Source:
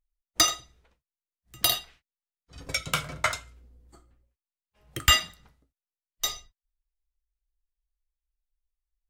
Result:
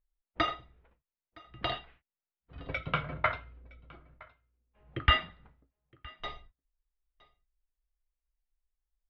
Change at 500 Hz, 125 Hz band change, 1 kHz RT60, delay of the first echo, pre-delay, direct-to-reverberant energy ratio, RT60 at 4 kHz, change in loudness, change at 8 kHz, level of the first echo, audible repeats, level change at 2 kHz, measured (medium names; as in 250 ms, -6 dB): -0.5 dB, 0.0 dB, no reverb, 965 ms, no reverb, no reverb, no reverb, -7.0 dB, under -40 dB, -24.0 dB, 1, -4.0 dB